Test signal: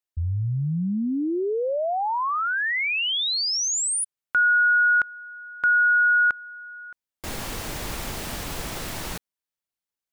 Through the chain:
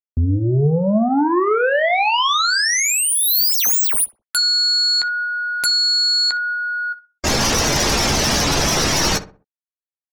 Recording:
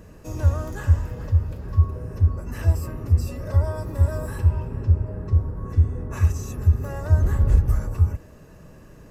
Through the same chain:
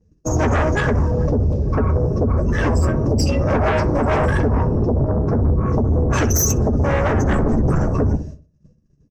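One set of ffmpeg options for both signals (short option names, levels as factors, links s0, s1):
-filter_complex "[0:a]afftdn=nr=25:nf=-37,lowpass=f=5800:t=q:w=5.5,agate=range=0.0224:threshold=0.0126:ratio=3:release=162:detection=rms,lowshelf=f=90:g=-7,acompressor=threshold=0.0355:ratio=4:attack=99:release=83:knee=1:detection=peak,highshelf=f=4300:g=5.5,aeval=exprs='0.2*sin(PI/2*5.62*val(0)/0.2)':c=same,asplit=2[s0][s1];[s1]adelay=14,volume=0.316[s2];[s0][s2]amix=inputs=2:normalize=0,asplit=2[s3][s4];[s4]adelay=63,lowpass=f=1300:p=1,volume=0.251,asplit=2[s5][s6];[s6]adelay=63,lowpass=f=1300:p=1,volume=0.37,asplit=2[s7][s8];[s8]adelay=63,lowpass=f=1300:p=1,volume=0.37,asplit=2[s9][s10];[s10]adelay=63,lowpass=f=1300:p=1,volume=0.37[s11];[s3][s5][s7][s9][s11]amix=inputs=5:normalize=0"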